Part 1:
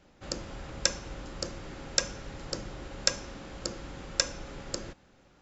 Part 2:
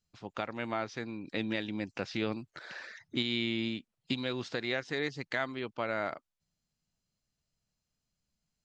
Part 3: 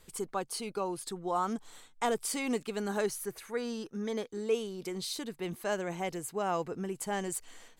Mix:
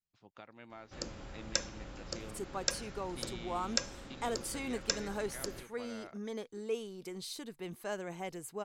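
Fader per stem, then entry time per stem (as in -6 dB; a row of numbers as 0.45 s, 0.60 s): -6.0 dB, -16.5 dB, -6.0 dB; 0.70 s, 0.00 s, 2.20 s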